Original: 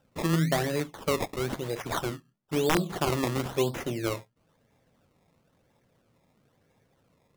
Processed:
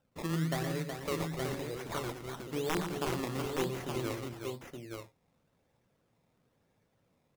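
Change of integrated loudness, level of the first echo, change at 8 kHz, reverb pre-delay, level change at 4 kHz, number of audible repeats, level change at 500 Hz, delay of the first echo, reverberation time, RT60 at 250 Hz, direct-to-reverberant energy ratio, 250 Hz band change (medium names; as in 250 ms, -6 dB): -7.0 dB, -9.0 dB, -6.5 dB, no reverb, -6.5 dB, 3, -6.5 dB, 117 ms, no reverb, no reverb, no reverb, -6.0 dB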